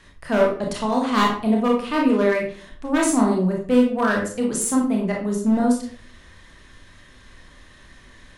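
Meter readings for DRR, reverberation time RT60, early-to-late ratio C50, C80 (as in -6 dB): -1.0 dB, 0.50 s, 5.0 dB, 9.5 dB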